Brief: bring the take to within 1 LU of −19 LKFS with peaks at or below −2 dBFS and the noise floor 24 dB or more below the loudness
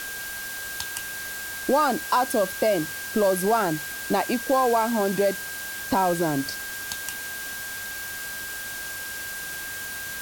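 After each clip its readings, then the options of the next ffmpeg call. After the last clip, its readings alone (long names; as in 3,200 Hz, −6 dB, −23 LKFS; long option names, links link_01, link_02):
interfering tone 1,600 Hz; level of the tone −34 dBFS; background noise floor −34 dBFS; target noise floor −50 dBFS; integrated loudness −26.0 LKFS; sample peak −9.5 dBFS; target loudness −19.0 LKFS
→ -af "bandreject=frequency=1600:width=30"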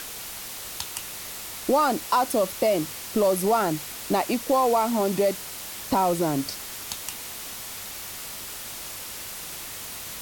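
interfering tone none found; background noise floor −37 dBFS; target noise floor −51 dBFS
→ -af "afftdn=noise_reduction=14:noise_floor=-37"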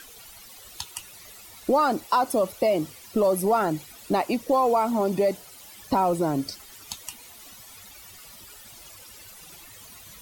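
background noise floor −47 dBFS; target noise floor −49 dBFS
→ -af "afftdn=noise_reduction=6:noise_floor=-47"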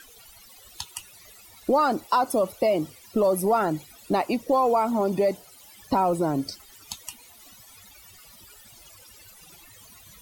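background noise floor −51 dBFS; integrated loudness −24.5 LKFS; sample peak −11.0 dBFS; target loudness −19.0 LKFS
→ -af "volume=5.5dB"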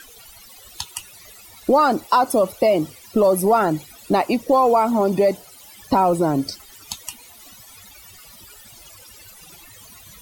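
integrated loudness −19.0 LKFS; sample peak −5.5 dBFS; background noise floor −45 dBFS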